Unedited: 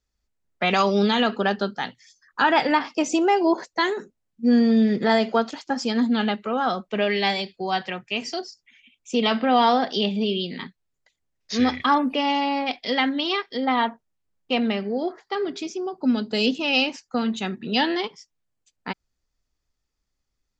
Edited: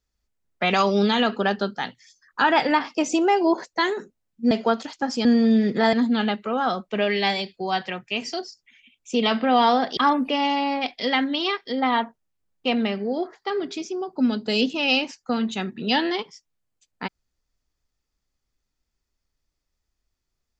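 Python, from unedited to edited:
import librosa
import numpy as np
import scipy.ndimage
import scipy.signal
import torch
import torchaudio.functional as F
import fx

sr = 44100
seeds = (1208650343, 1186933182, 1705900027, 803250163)

y = fx.edit(x, sr, fx.move(start_s=4.51, length_s=0.68, to_s=5.93),
    fx.cut(start_s=9.97, length_s=1.85), tone=tone)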